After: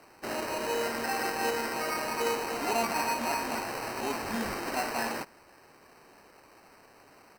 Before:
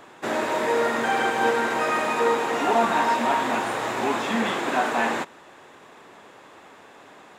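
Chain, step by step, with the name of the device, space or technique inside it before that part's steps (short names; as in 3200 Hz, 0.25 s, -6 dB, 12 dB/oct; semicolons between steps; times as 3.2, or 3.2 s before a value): crushed at another speed (playback speed 0.8×; sample-and-hold 16×; playback speed 1.25×); gain -8.5 dB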